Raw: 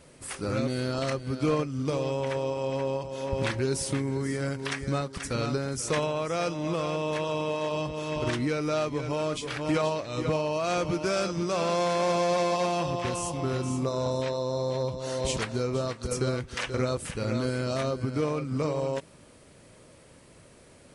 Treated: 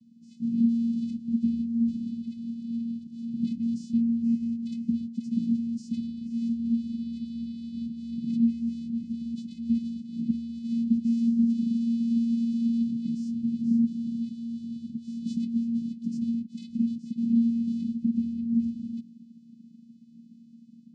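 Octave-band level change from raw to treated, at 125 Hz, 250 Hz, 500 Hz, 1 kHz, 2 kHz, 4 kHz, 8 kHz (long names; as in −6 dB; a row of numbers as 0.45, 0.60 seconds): −10.5 dB, +8.0 dB, below −35 dB, below −40 dB, below −30 dB, below −15 dB, below −20 dB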